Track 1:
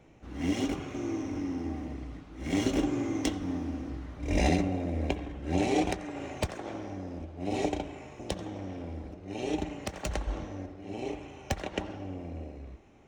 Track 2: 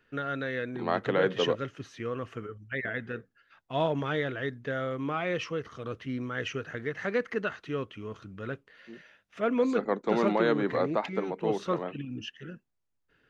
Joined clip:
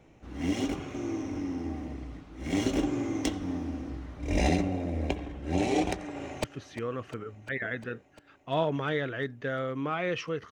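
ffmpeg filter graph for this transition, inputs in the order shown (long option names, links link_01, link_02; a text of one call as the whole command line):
ffmpeg -i cue0.wav -i cue1.wav -filter_complex "[0:a]apad=whole_dur=10.51,atrim=end=10.51,atrim=end=6.442[link_01];[1:a]atrim=start=1.668:end=5.74[link_02];[link_01][link_02]acrossfade=duration=0.004:curve1=hsin:curve2=hsin,asplit=2[link_03][link_04];[link_04]afade=type=in:start_time=6.02:duration=0.01,afade=type=out:start_time=6.44:duration=0.01,aecho=0:1:350|700|1050|1400|1750|2100|2450|2800|3150|3500|3850|4200:0.158489|0.126791|0.101433|0.0811465|0.0649172|0.0519338|0.041547|0.0332376|0.0265901|0.0212721|0.0170177|0.0136141[link_05];[link_03][link_05]amix=inputs=2:normalize=0" out.wav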